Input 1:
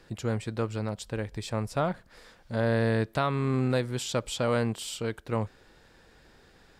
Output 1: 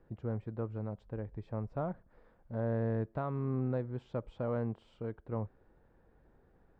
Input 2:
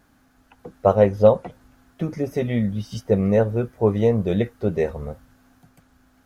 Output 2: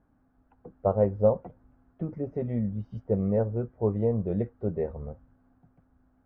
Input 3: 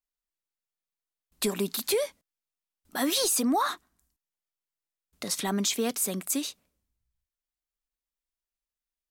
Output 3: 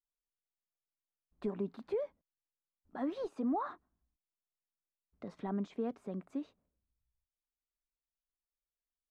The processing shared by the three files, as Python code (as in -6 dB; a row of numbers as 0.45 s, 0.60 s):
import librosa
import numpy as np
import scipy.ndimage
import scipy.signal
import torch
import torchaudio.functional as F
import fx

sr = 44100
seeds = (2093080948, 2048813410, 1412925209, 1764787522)

y = scipy.signal.sosfilt(scipy.signal.butter(2, 1000.0, 'lowpass', fs=sr, output='sos'), x)
y = fx.low_shelf(y, sr, hz=120.0, db=4.0)
y = F.gain(torch.from_numpy(y), -8.0).numpy()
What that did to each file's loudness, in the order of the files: -8.0 LU, -7.5 LU, -11.0 LU